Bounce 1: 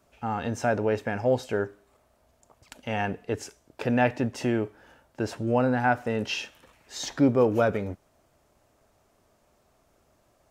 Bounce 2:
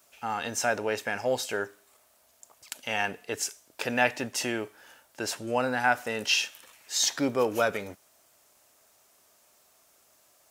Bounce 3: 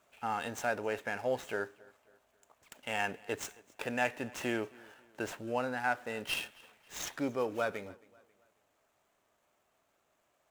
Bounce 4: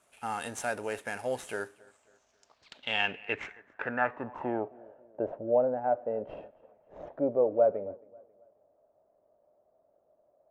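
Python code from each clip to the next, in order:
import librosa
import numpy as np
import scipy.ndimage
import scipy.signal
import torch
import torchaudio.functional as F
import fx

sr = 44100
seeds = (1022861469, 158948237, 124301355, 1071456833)

y1 = fx.tilt_eq(x, sr, slope=4.0)
y2 = scipy.signal.medfilt(y1, 9)
y2 = fx.rider(y2, sr, range_db=3, speed_s=0.5)
y2 = fx.echo_feedback(y2, sr, ms=270, feedback_pct=41, wet_db=-24)
y2 = F.gain(torch.from_numpy(y2), -5.0).numpy()
y3 = fx.filter_sweep_lowpass(y2, sr, from_hz=10000.0, to_hz=600.0, start_s=1.72, end_s=4.9, q=4.9)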